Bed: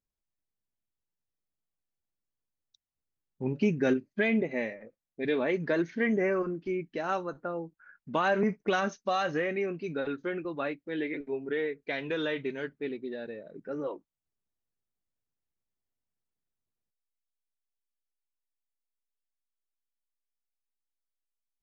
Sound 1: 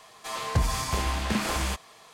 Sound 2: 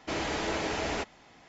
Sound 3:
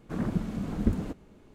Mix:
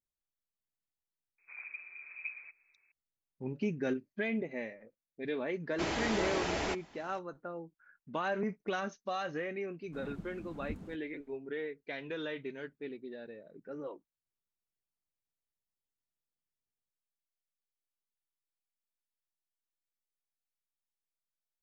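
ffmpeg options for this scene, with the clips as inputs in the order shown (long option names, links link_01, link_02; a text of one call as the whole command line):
ffmpeg -i bed.wav -i cue0.wav -i cue1.wav -i cue2.wav -filter_complex "[3:a]asplit=2[link_01][link_02];[0:a]volume=-7.5dB[link_03];[link_01]lowpass=frequency=2200:width_type=q:width=0.5098,lowpass=frequency=2200:width_type=q:width=0.6013,lowpass=frequency=2200:width_type=q:width=0.9,lowpass=frequency=2200:width_type=q:width=2.563,afreqshift=-2600,atrim=end=1.54,asetpts=PTS-STARTPTS,volume=-17dB,afade=type=in:duration=0.004:curve=hsin,afade=type=out:start_time=1.536:duration=0.004:curve=hsin,adelay=1380[link_04];[2:a]atrim=end=1.48,asetpts=PTS-STARTPTS,volume=-2.5dB,afade=type=in:duration=0.004:curve=hsin,afade=type=out:start_time=1.476:duration=0.004:curve=hsin,adelay=5710[link_05];[link_02]atrim=end=1.54,asetpts=PTS-STARTPTS,volume=-16dB,afade=type=in:duration=0.004:curve=hsin,afade=type=out:start_time=1.536:duration=0.004:curve=hsin,adelay=9830[link_06];[link_03][link_04][link_05][link_06]amix=inputs=4:normalize=0" out.wav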